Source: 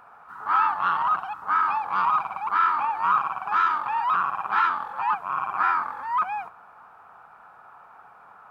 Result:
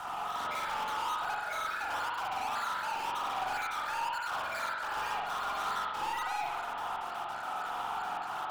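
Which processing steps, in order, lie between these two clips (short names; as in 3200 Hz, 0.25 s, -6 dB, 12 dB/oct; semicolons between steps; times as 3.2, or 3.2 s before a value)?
random spectral dropouts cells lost 32%; elliptic band-pass 700–2300 Hz; tilt -4.5 dB/oct; notch 1100 Hz, Q 12; compressor 6:1, threshold -37 dBFS, peak gain reduction 16 dB; sample leveller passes 5; soft clip -38.5 dBFS, distortion -9 dB; spring tank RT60 1.1 s, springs 44 ms, chirp 65 ms, DRR -3.5 dB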